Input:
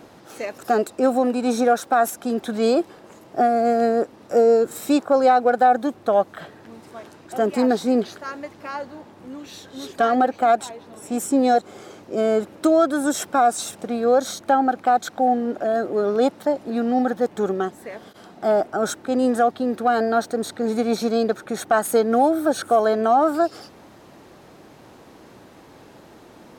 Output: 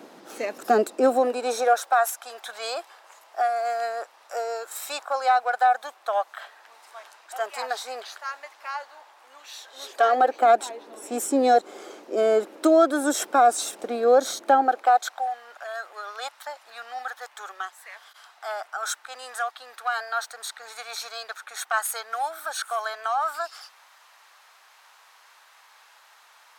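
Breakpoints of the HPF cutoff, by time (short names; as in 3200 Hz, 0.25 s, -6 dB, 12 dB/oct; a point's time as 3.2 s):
HPF 24 dB/oct
0.77 s 210 Hz
2.08 s 780 Hz
9.52 s 780 Hz
10.5 s 300 Hz
14.54 s 300 Hz
15.32 s 1000 Hz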